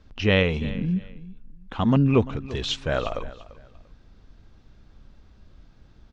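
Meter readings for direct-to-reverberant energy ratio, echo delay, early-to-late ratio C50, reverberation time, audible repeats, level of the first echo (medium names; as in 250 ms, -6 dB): no reverb, 343 ms, no reverb, no reverb, 2, -18.0 dB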